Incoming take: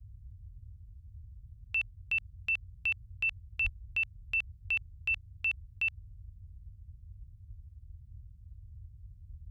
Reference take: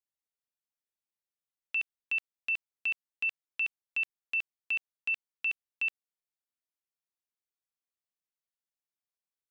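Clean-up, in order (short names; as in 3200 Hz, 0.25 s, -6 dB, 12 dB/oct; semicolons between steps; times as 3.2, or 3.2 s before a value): 3.63–3.75 HPF 140 Hz 24 dB/oct; noise print and reduce 30 dB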